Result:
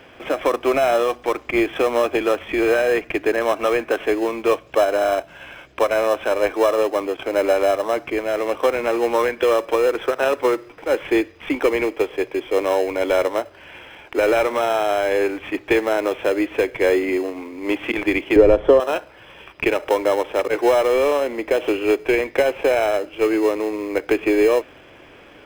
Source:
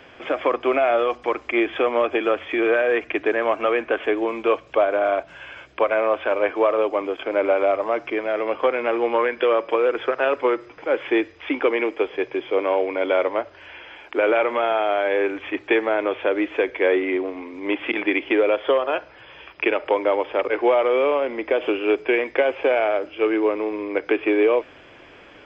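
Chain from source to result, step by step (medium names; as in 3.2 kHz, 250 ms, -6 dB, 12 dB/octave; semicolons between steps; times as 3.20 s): in parallel at -10.5 dB: sample-rate reducer 2.3 kHz, jitter 0%; 18.36–18.80 s: on the sum: tilt EQ -4.5 dB/octave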